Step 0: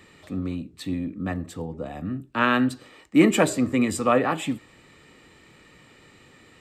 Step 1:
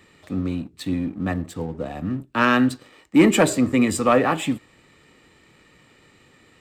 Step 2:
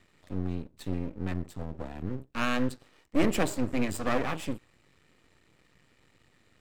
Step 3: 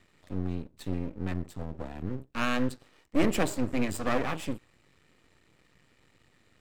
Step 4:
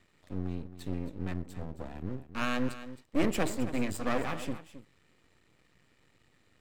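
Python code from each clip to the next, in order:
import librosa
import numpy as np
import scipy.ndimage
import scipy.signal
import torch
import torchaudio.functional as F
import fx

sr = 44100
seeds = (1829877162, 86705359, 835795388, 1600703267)

y1 = fx.leveller(x, sr, passes=1)
y2 = fx.low_shelf(y1, sr, hz=130.0, db=8.0)
y2 = np.maximum(y2, 0.0)
y2 = F.gain(torch.from_numpy(y2), -7.5).numpy()
y3 = y2
y4 = y3 + 10.0 ** (-13.5 / 20.0) * np.pad(y3, (int(268 * sr / 1000.0), 0))[:len(y3)]
y4 = F.gain(torch.from_numpy(y4), -3.0).numpy()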